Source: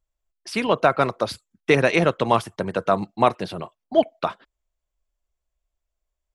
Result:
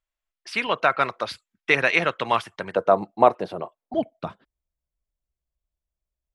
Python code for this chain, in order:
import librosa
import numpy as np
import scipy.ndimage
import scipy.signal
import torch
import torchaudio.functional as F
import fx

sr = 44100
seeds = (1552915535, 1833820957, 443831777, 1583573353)

y = fx.peak_eq(x, sr, hz=fx.steps((0.0, 2100.0), (2.75, 610.0), (3.94, 120.0)), db=14.5, octaves=2.9)
y = y * librosa.db_to_amplitude(-11.0)